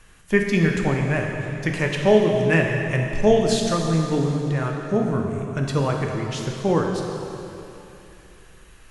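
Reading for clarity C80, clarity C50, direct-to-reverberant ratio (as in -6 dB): 3.5 dB, 2.5 dB, 1.0 dB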